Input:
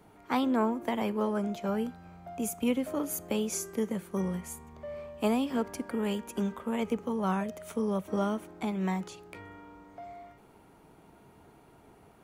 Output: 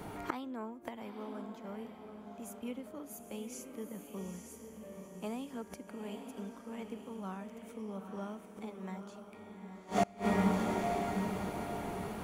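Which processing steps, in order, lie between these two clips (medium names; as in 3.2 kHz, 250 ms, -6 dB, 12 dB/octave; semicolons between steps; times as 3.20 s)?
gain riding within 4 dB 2 s; echo that smears into a reverb 868 ms, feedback 40%, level -5.5 dB; inverted gate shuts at -30 dBFS, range -27 dB; trim +13 dB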